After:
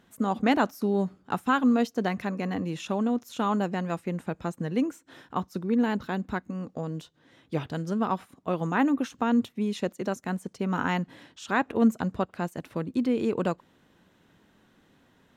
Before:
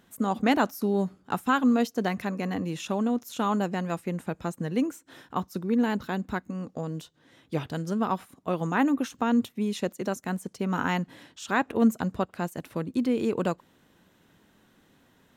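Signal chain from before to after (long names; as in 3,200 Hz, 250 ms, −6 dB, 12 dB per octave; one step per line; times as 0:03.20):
high-shelf EQ 8,200 Hz −9.5 dB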